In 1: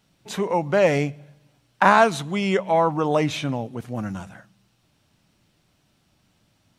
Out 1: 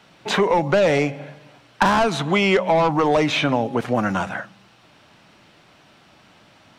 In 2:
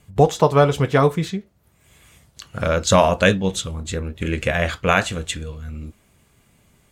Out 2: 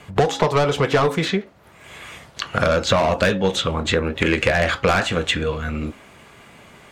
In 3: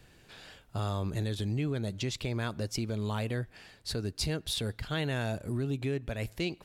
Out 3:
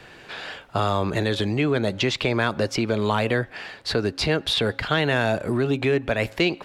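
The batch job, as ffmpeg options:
-filter_complex "[0:a]highshelf=f=4.2k:g=-10.5,bandreject=f=273.3:t=h:w=4,bandreject=f=546.6:t=h:w=4,bandreject=f=819.9:t=h:w=4,asplit=2[a][b];[b]highpass=f=720:p=1,volume=20dB,asoftclip=type=tanh:threshold=-1.5dB[c];[a][c]amix=inputs=2:normalize=0,lowpass=f=3.9k:p=1,volume=-6dB,acrossover=split=310|4300[d][e][f];[d]acompressor=threshold=-29dB:ratio=4[g];[e]acompressor=threshold=-25dB:ratio=4[h];[f]acompressor=threshold=-40dB:ratio=4[i];[g][h][i]amix=inputs=3:normalize=0,volume=6dB"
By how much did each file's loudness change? +2.0, -0.5, +10.5 LU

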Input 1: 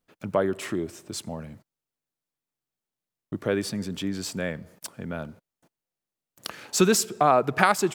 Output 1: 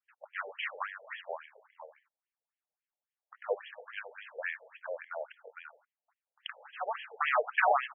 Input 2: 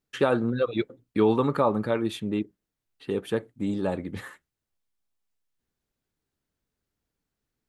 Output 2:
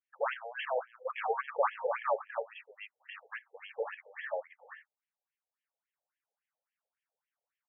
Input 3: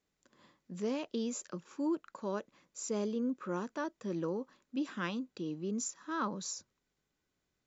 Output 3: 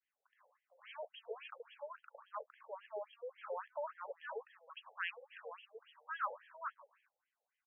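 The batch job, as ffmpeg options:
-af "aecho=1:1:457:0.631,aresample=11025,aeval=exprs='clip(val(0),-1,0.0708)':c=same,aresample=44100,adynamicequalizer=threshold=0.00501:dfrequency=2900:dqfactor=0.84:tfrequency=2900:tqfactor=0.84:attack=5:release=100:ratio=0.375:range=2:mode=boostabove:tftype=bell,afftfilt=real='re*between(b*sr/1024,600*pow(2400/600,0.5+0.5*sin(2*PI*3.6*pts/sr))/1.41,600*pow(2400/600,0.5+0.5*sin(2*PI*3.6*pts/sr))*1.41)':imag='im*between(b*sr/1024,600*pow(2400/600,0.5+0.5*sin(2*PI*3.6*pts/sr))/1.41,600*pow(2400/600,0.5+0.5*sin(2*PI*3.6*pts/sr))*1.41)':win_size=1024:overlap=0.75"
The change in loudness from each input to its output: -10.0, -9.5, -9.0 LU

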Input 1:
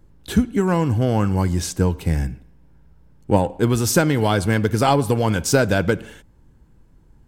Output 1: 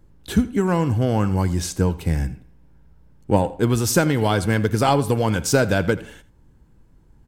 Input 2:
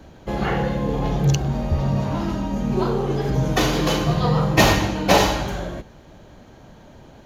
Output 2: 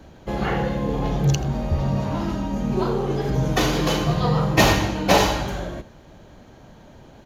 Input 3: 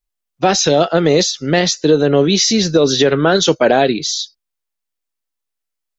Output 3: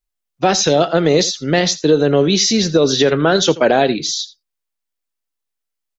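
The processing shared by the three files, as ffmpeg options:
-af "aecho=1:1:83:0.119,volume=-1dB"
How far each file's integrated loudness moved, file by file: -1.0, -1.0, -1.0 LU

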